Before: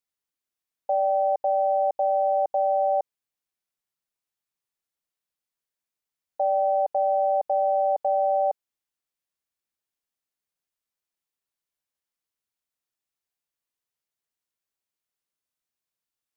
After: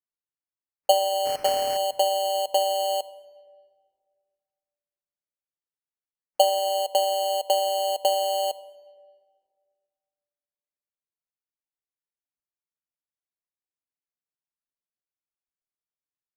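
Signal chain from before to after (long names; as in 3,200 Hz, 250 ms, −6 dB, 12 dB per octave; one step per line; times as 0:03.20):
0:01.25–0:01.77: linear delta modulator 16 kbit/s, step −29 dBFS
noise reduction from a noise print of the clip's start 19 dB
dynamic equaliser 430 Hz, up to +4 dB, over −36 dBFS, Q 1.1
brickwall limiter −18 dBFS, peak gain reduction 4.5 dB
transient designer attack +12 dB, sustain −11 dB
decimation without filtering 12×
rectangular room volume 2,400 cubic metres, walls mixed, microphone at 0.4 metres
level −1.5 dB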